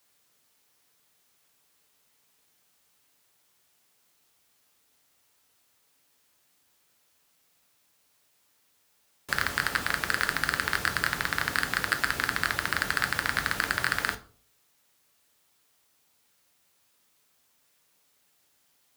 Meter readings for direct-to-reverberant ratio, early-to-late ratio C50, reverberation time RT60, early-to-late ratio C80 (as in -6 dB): 7.0 dB, 15.5 dB, 0.45 s, 21.0 dB